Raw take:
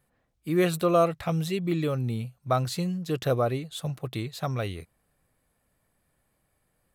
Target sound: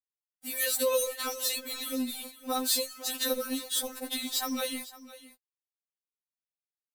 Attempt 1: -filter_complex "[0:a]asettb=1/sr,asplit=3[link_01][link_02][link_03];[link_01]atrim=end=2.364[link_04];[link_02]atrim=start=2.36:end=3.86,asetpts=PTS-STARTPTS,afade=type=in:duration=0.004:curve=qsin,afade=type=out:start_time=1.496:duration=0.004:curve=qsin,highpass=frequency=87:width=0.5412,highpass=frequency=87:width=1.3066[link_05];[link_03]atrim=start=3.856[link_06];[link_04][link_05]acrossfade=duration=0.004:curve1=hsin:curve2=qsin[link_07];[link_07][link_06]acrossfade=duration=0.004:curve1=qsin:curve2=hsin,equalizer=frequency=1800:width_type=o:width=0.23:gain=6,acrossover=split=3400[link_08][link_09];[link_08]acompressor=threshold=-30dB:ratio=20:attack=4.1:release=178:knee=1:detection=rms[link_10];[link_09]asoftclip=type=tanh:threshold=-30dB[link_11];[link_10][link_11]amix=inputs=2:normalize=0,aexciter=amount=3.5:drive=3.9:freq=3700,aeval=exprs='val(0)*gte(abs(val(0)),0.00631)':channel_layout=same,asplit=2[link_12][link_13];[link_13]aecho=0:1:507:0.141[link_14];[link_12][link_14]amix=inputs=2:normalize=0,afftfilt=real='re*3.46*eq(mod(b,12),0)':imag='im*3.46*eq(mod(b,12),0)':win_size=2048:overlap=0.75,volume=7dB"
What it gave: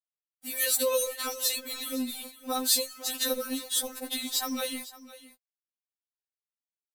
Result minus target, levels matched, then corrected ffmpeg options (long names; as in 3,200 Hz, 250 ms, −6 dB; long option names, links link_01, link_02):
soft clipping: distortion −8 dB
-filter_complex "[0:a]asettb=1/sr,asplit=3[link_01][link_02][link_03];[link_01]atrim=end=2.364[link_04];[link_02]atrim=start=2.36:end=3.86,asetpts=PTS-STARTPTS,afade=type=in:duration=0.004:curve=qsin,afade=type=out:start_time=1.496:duration=0.004:curve=qsin,highpass=frequency=87:width=0.5412,highpass=frequency=87:width=1.3066[link_05];[link_03]atrim=start=3.856[link_06];[link_04][link_05]acrossfade=duration=0.004:curve1=hsin:curve2=qsin[link_07];[link_07][link_06]acrossfade=duration=0.004:curve1=qsin:curve2=hsin,equalizer=frequency=1800:width_type=o:width=0.23:gain=6,acrossover=split=3400[link_08][link_09];[link_08]acompressor=threshold=-30dB:ratio=20:attack=4.1:release=178:knee=1:detection=rms[link_10];[link_09]asoftclip=type=tanh:threshold=-39dB[link_11];[link_10][link_11]amix=inputs=2:normalize=0,aexciter=amount=3.5:drive=3.9:freq=3700,aeval=exprs='val(0)*gte(abs(val(0)),0.00631)':channel_layout=same,asplit=2[link_12][link_13];[link_13]aecho=0:1:507:0.141[link_14];[link_12][link_14]amix=inputs=2:normalize=0,afftfilt=real='re*3.46*eq(mod(b,12),0)':imag='im*3.46*eq(mod(b,12),0)':win_size=2048:overlap=0.75,volume=7dB"